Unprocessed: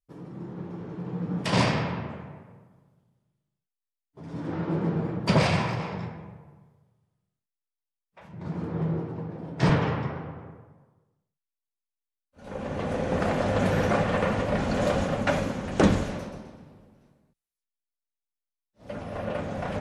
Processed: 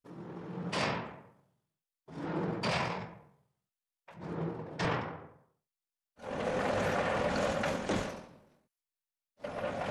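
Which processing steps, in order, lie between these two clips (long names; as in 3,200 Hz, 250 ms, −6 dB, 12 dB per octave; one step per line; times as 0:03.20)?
low-shelf EQ 280 Hz −11.5 dB
brickwall limiter −21 dBFS, peak gain reduction 10 dB
tempo change 2×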